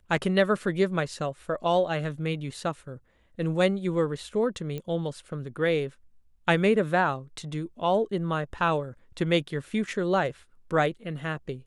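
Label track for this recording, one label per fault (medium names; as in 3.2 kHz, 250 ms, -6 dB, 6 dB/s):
4.780000	4.780000	pop -22 dBFS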